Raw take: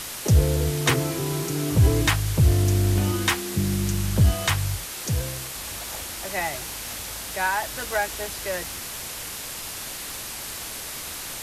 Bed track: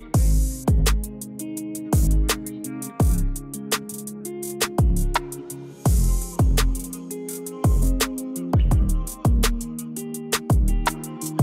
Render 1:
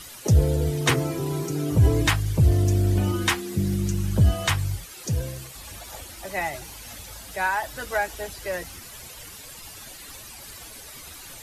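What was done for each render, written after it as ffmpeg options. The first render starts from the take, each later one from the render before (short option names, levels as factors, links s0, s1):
-af "afftdn=nr=12:nf=-35"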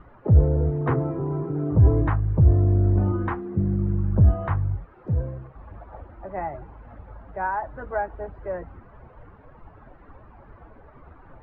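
-af "lowpass=f=1300:w=0.5412,lowpass=f=1300:w=1.3066,lowshelf=f=63:g=6"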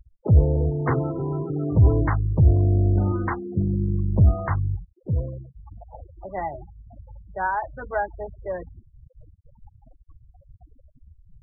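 -af "afftfilt=real='re*gte(hypot(re,im),0.0251)':imag='im*gte(hypot(re,im),0.0251)':win_size=1024:overlap=0.75,highshelf=f=2000:g=8.5"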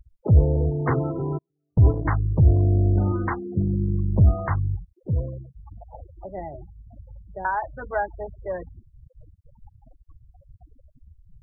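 -filter_complex "[0:a]asplit=3[s0][s1][s2];[s0]afade=t=out:st=1.37:d=0.02[s3];[s1]agate=range=0.00282:threshold=0.112:ratio=16:release=100:detection=peak,afade=t=in:st=1.37:d=0.02,afade=t=out:st=2.04:d=0.02[s4];[s2]afade=t=in:st=2.04:d=0.02[s5];[s3][s4][s5]amix=inputs=3:normalize=0,asettb=1/sr,asplit=3[s6][s7][s8];[s6]atrim=end=6.284[s9];[s7]atrim=start=6.28:end=7.45,asetpts=PTS-STARTPTS,afade=t=in:d=0.004:c=qsin,afade=t=out:st=1.166:d=0.004:c=qsin,asuperstop=centerf=1300:order=4:qfactor=0.63[s10];[s8]atrim=start=7.446[s11];[s9][s10]acrossfade=d=0.004:c1=hsin:c2=qsin[s12];[s12][s11]acrossfade=d=0.004:c1=qsin:c2=hsin"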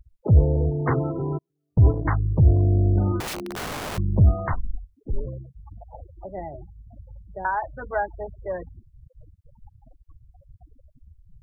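-filter_complex "[0:a]asettb=1/sr,asplit=3[s0][s1][s2];[s0]atrim=end=3.204[s3];[s1]atrim=start=3.2:end=3.98,asetpts=PTS-STARTPTS,afade=t=in:d=0.004:c=qsin,afade=t=out:st=0.776:d=0.004:c=qsin,aeval=exprs='(mod(21.1*val(0)+1,2)-1)/21.1':c=same[s4];[s2]atrim=start=3.976[s5];[s3][s4]acrossfade=d=0.004:c1=hsin:c2=qsin[s6];[s6][s5]acrossfade=d=0.004:c1=qsin:c2=hsin,asplit=3[s7][s8][s9];[s7]afade=t=out:st=4.51:d=0.02[s10];[s8]afreqshift=-88,afade=t=in:st=4.51:d=0.02,afade=t=out:st=5.25:d=0.02[s11];[s9]afade=t=in:st=5.25:d=0.02[s12];[s10][s11][s12]amix=inputs=3:normalize=0"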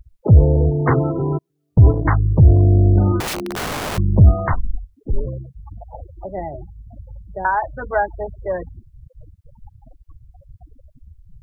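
-af "volume=2.11,alimiter=limit=0.794:level=0:latency=1"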